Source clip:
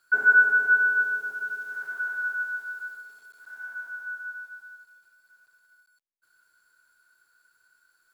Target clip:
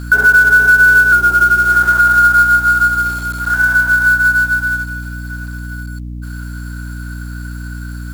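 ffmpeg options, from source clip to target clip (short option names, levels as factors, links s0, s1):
-filter_complex "[0:a]lowshelf=f=260:g=4,acompressor=threshold=0.0112:ratio=3,acrusher=bits=5:mode=log:mix=0:aa=0.000001,asettb=1/sr,asplit=3[s0][s1][s2];[s0]atrim=end=1.124[s3];[s1]atrim=start=1.12:end=3.54,asetpts=PTS-STARTPTS,afade=t=in:d=0.004:c=qsin,afade=t=out:st=2.416:d=0.004:c=qsin,afreqshift=-50[s4];[s2]atrim=start=3.536[s5];[s3][s4]acrossfade=d=0.004:c1=hsin:c2=qsin[s6];[s6][s5]acrossfade=d=0.004:c1=qsin:c2=hsin,aeval=exprs='val(0)+0.00224*(sin(2*PI*60*n/s)+sin(2*PI*2*60*n/s)/2+sin(2*PI*3*60*n/s)/3+sin(2*PI*4*60*n/s)/4+sin(2*PI*5*60*n/s)/5)':c=same,alimiter=level_in=31.6:limit=0.891:release=50:level=0:latency=1,volume=0.891"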